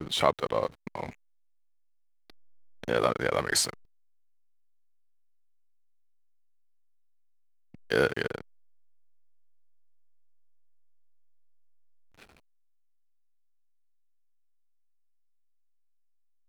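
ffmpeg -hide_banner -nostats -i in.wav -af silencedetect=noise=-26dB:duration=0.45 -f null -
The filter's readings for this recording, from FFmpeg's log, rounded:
silence_start: 1.03
silence_end: 2.84 | silence_duration: 1.80
silence_start: 3.69
silence_end: 7.92 | silence_duration: 4.22
silence_start: 8.38
silence_end: 16.48 | silence_duration: 8.10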